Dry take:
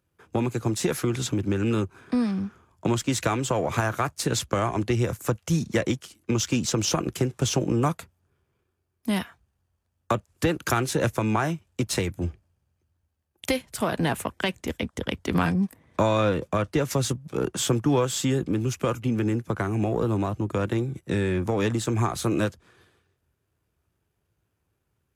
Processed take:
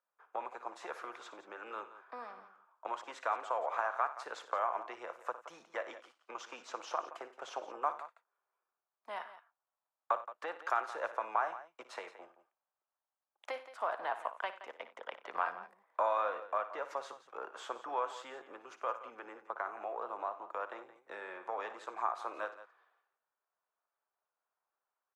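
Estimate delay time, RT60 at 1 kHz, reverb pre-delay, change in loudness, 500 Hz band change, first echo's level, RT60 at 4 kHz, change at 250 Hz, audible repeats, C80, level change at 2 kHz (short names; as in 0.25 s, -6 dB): 58 ms, none, none, -13.5 dB, -14.0 dB, -13.5 dB, none, -33.0 dB, 3, none, -10.5 dB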